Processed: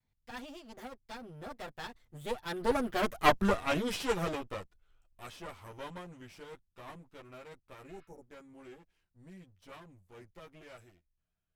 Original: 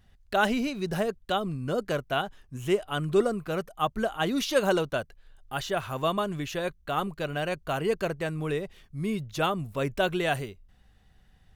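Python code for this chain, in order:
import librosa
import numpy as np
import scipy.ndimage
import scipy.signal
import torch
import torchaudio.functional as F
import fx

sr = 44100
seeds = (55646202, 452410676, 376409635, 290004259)

y = fx.lower_of_two(x, sr, delay_ms=9.4)
y = fx.doppler_pass(y, sr, speed_mps=54, closest_m=12.0, pass_at_s=3.23)
y = fx.spec_repair(y, sr, seeds[0], start_s=7.97, length_s=0.23, low_hz=990.0, high_hz=5400.0, source='both')
y = y * 10.0 ** (5.0 / 20.0)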